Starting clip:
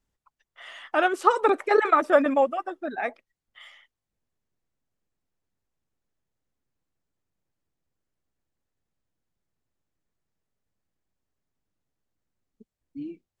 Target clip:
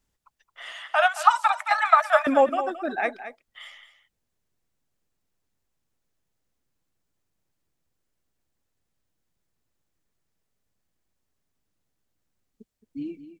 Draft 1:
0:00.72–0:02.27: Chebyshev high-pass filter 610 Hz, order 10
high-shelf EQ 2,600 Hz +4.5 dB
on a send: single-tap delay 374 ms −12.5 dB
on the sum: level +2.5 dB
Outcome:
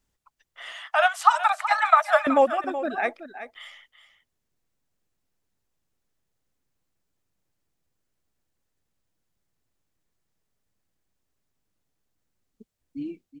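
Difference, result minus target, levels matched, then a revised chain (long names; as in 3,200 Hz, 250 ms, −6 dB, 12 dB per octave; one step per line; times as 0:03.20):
echo 155 ms late
0:00.72–0:02.27: Chebyshev high-pass filter 610 Hz, order 10
high-shelf EQ 2,600 Hz +4.5 dB
on a send: single-tap delay 219 ms −12.5 dB
on the sum: level +2.5 dB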